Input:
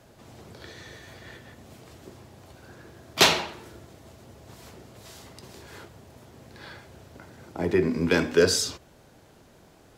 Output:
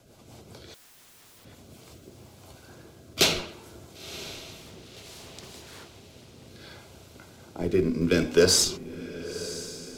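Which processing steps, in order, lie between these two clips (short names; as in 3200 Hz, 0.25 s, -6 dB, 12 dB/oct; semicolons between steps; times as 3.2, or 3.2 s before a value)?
high shelf 3800 Hz +6 dB; notch 1800 Hz, Q 5.2; in parallel at -6.5 dB: Schmitt trigger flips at -19.5 dBFS; on the sum: rotary speaker horn 5 Hz, later 0.65 Hz, at 1.37; 0.74–1.45 wrapped overs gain 50 dB; on a send: diffused feedback echo 1.011 s, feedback 44%, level -14 dB; 4.59–6.47 on the sum: Doppler distortion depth 0.51 ms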